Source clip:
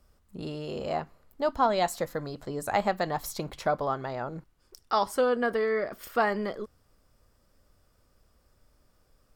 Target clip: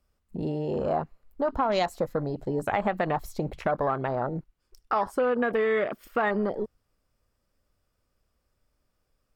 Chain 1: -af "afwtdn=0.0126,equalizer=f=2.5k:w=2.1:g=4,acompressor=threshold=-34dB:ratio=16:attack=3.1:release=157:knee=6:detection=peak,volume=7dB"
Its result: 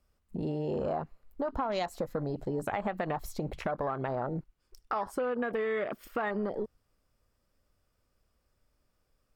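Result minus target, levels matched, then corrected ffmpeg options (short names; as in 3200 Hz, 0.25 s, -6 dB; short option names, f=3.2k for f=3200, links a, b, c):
compressor: peak gain reduction +7 dB
-af "afwtdn=0.0126,equalizer=f=2.5k:w=2.1:g=4,acompressor=threshold=-26.5dB:ratio=16:attack=3.1:release=157:knee=6:detection=peak,volume=7dB"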